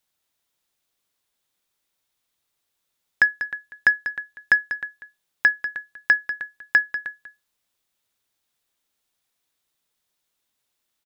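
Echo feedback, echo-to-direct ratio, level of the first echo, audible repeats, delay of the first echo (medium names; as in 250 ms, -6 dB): no regular repeats, -11.5 dB, -11.5 dB, 1, 193 ms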